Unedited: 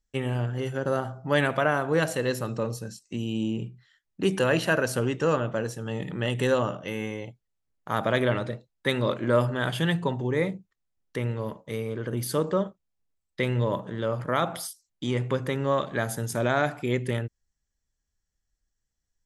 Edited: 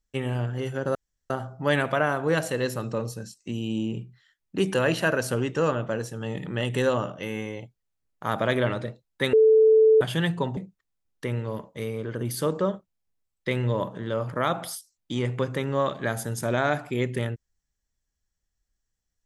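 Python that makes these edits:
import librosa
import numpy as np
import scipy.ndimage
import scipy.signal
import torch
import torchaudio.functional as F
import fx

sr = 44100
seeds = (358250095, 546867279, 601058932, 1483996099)

y = fx.edit(x, sr, fx.insert_room_tone(at_s=0.95, length_s=0.35),
    fx.bleep(start_s=8.98, length_s=0.68, hz=439.0, db=-13.0),
    fx.cut(start_s=10.22, length_s=0.27), tone=tone)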